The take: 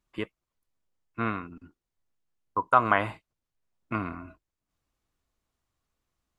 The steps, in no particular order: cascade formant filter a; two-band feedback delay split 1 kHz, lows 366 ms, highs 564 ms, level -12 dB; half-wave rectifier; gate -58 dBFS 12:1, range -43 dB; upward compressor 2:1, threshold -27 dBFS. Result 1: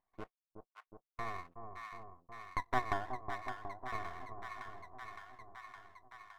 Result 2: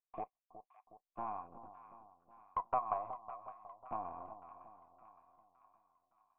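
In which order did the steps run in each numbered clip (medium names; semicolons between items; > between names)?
cascade formant filter > gate > half-wave rectifier > two-band feedback delay > upward compressor; half-wave rectifier > cascade formant filter > upward compressor > gate > two-band feedback delay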